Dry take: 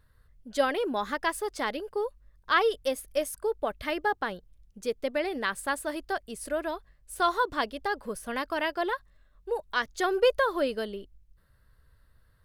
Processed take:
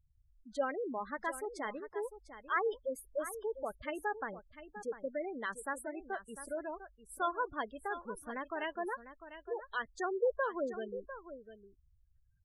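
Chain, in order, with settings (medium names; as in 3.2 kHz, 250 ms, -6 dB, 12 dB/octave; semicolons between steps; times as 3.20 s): spectral gate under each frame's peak -15 dB strong; on a send: delay 699 ms -12.5 dB; on the sum: trim -8.5 dB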